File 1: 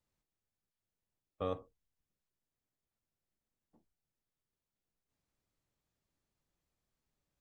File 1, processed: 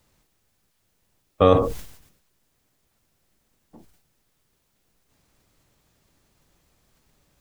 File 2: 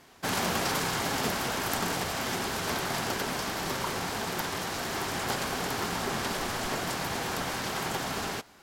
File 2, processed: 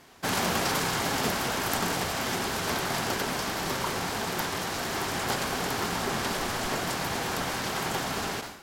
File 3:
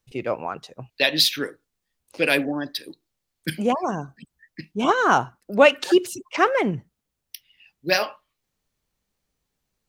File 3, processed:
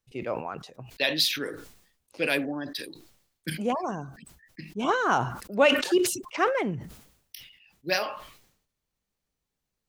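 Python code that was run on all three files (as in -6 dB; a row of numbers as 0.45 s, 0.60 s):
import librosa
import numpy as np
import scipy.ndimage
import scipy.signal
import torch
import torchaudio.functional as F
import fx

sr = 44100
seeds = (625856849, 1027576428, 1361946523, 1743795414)

y = fx.sustainer(x, sr, db_per_s=80.0)
y = y * 10.0 ** (-30 / 20.0) / np.sqrt(np.mean(np.square(y)))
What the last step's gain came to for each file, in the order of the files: +21.5 dB, +1.5 dB, -6.0 dB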